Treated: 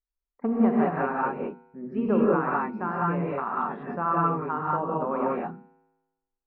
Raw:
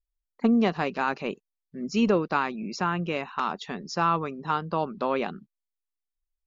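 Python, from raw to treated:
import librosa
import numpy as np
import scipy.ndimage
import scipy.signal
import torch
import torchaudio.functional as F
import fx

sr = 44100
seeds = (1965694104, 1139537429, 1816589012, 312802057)

y = scipy.signal.sosfilt(scipy.signal.butter(4, 1600.0, 'lowpass', fs=sr, output='sos'), x)
y = fx.low_shelf(y, sr, hz=61.0, db=-7.0)
y = fx.hum_notches(y, sr, base_hz=60, count=4)
y = fx.comb_fb(y, sr, f0_hz=54.0, decay_s=1.1, harmonics='odd', damping=0.0, mix_pct=40)
y = fx.rev_gated(y, sr, seeds[0], gate_ms=220, shape='rising', drr_db=-5.0)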